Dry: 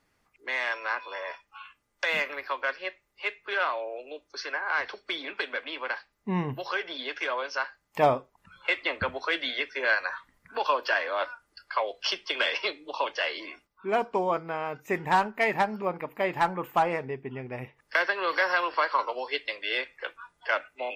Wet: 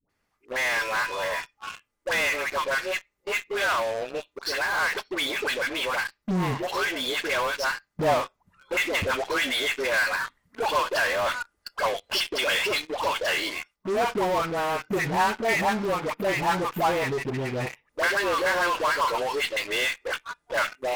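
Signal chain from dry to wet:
0:18.22–0:18.81: spectral tilt −2 dB per octave
all-pass dispersion highs, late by 96 ms, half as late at 670 Hz
in parallel at −10.5 dB: fuzz pedal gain 41 dB, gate −46 dBFS
on the sum: level −4 dB

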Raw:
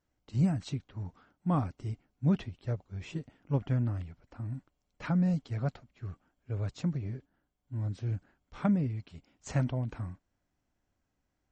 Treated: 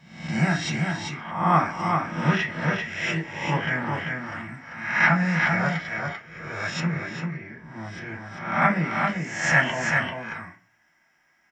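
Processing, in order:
peak hold with a rise ahead of every peak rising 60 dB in 0.72 s
octave-band graphic EQ 125/250/500/1,000/2,000 Hz −7/−10/−11/−3/+12 dB
single-tap delay 392 ms −4.5 dB
convolution reverb RT60 0.30 s, pre-delay 3 ms, DRR −2.5 dB
floating-point word with a short mantissa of 8 bits
0:06.80–0:08.62: high-shelf EQ 3,300 Hz −9 dB
level +4.5 dB

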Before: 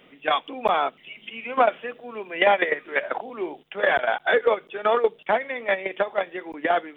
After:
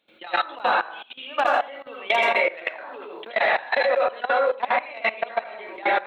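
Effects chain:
dynamic equaliser 470 Hz, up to +3 dB, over −28 dBFS, Q 1.8
harmonic generator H 3 −34 dB, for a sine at −7 dBFS
spectral tilt +1.5 dB per octave
dense smooth reverb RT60 0.57 s, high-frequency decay 0.55×, pre-delay 80 ms, DRR −4.5 dB
output level in coarse steps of 18 dB
change of speed 1.15×
level −1.5 dB

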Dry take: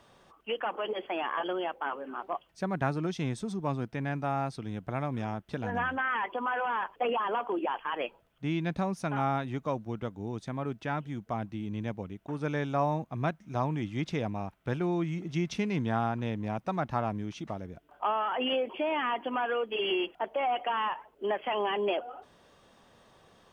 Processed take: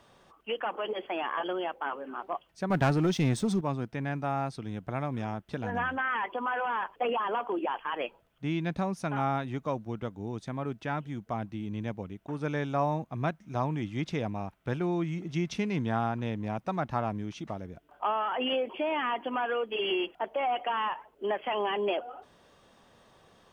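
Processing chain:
0:02.70–0:03.61: leveller curve on the samples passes 2

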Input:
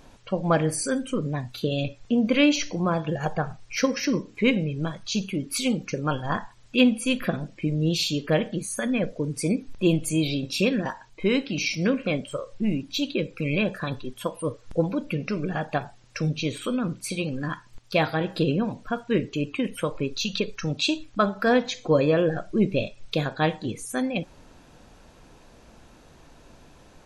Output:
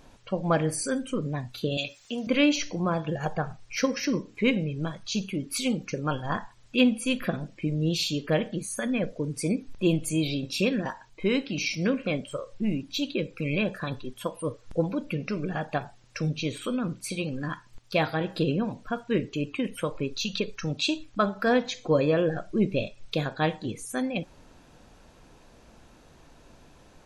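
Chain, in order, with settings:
0:01.77–0:02.27: spectral tilt +4.5 dB per octave
level −2.5 dB

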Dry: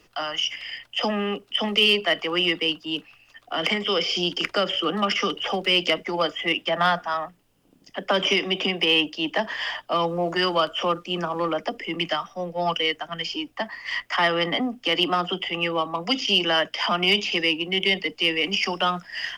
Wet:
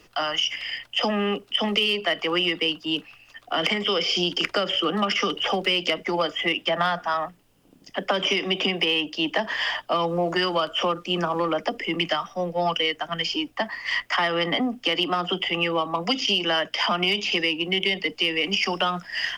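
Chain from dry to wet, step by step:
downward compressor, threshold −23 dBFS, peak gain reduction 8.5 dB
level +3.5 dB

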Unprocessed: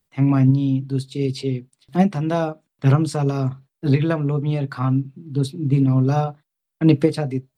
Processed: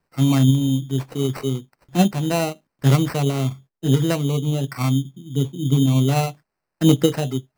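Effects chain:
0:03.51–0:05.66: low-pass filter 1,700 Hz 12 dB per octave
decimation without filtering 13×

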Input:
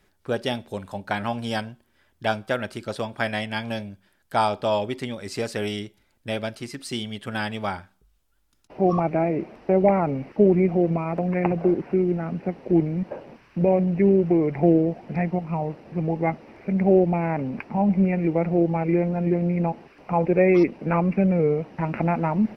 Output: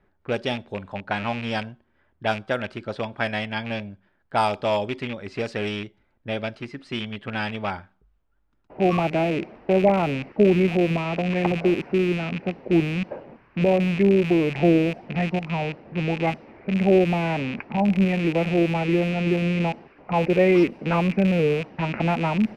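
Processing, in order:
loose part that buzzes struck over −31 dBFS, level −22 dBFS
low-pass that shuts in the quiet parts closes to 1,600 Hz, open at −17 dBFS

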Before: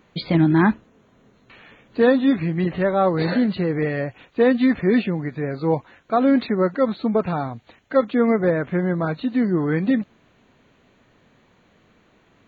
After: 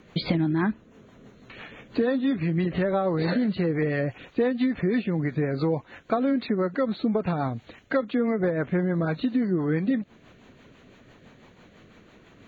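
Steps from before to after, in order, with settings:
rotating-speaker cabinet horn 6 Hz
downward compressor 6 to 1, threshold −29 dBFS, peak gain reduction 15 dB
level +7 dB

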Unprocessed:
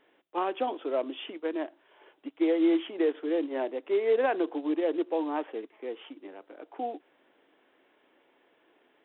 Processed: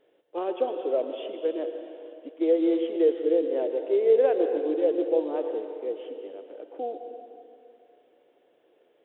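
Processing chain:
octave-band graphic EQ 125/250/500/1,000/2,000 Hz +4/−5/+11/−8/−6 dB
convolution reverb RT60 2.6 s, pre-delay 109 ms, DRR 6 dB
level −2 dB

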